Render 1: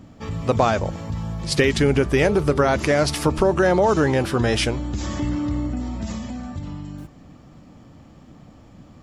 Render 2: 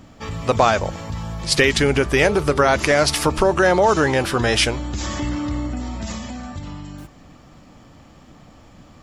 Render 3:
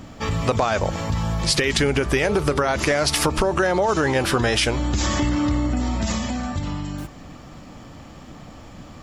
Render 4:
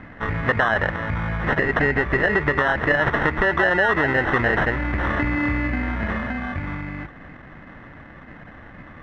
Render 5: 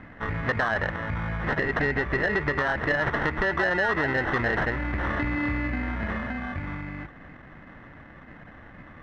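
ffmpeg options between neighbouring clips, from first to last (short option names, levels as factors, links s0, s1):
-af "equalizer=f=160:w=0.31:g=-8,volume=2"
-af "alimiter=limit=0.355:level=0:latency=1:release=38,acompressor=threshold=0.0794:ratio=6,volume=1.88"
-af "acrusher=samples=19:mix=1:aa=0.000001,lowpass=f=1900:t=q:w=5.2,volume=0.75"
-af "asoftclip=type=tanh:threshold=0.335,volume=0.596"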